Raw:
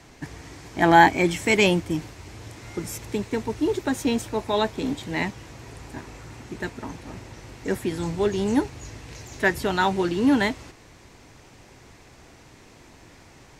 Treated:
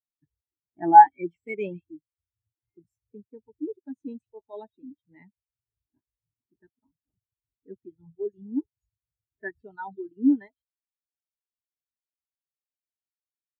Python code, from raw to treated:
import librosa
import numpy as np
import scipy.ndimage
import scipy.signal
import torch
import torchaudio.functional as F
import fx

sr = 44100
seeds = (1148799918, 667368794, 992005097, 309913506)

y = fx.echo_stepped(x, sr, ms=139, hz=3300.0, octaves=0.7, feedback_pct=70, wet_db=-6)
y = fx.dereverb_blind(y, sr, rt60_s=1.3)
y = fx.spectral_expand(y, sr, expansion=2.5)
y = y * librosa.db_to_amplitude(1.5)